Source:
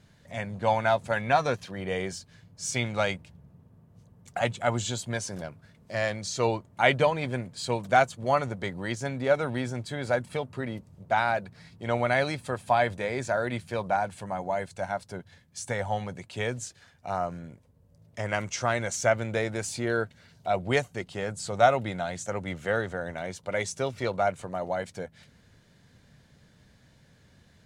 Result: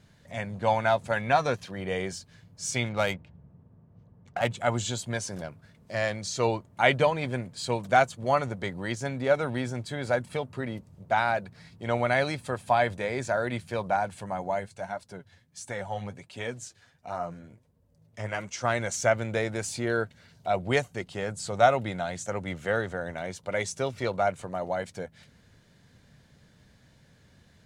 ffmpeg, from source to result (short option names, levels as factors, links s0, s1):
-filter_complex "[0:a]asettb=1/sr,asplit=3[s0][s1][s2];[s0]atrim=end=2.894[s3];[s1]atrim=start=2.89:end=4.51,asetpts=PTS-STARTPTS,afade=t=in:d=0.004:c=qsin,afade=t=out:st=1.616:d=0.004:c=qsin,adynamicsmooth=sensitivity=8:basefreq=2400[s4];[s2]atrim=start=4.506[s5];[s3][s4]acrossfade=d=0.004:c1=hsin:c2=qsin[s6];[s6][s5]acrossfade=d=0.004:c1=qsin:c2=hsin,asplit=3[s7][s8][s9];[s7]afade=t=out:st=14.59:d=0.02[s10];[s8]flanger=delay=2.8:depth=7.3:regen=38:speed=1.4:shape=triangular,afade=t=in:st=14.59:d=0.02,afade=t=out:st=18.63:d=0.02[s11];[s9]afade=t=in:st=18.63:d=0.02[s12];[s10][s11][s12]amix=inputs=3:normalize=0"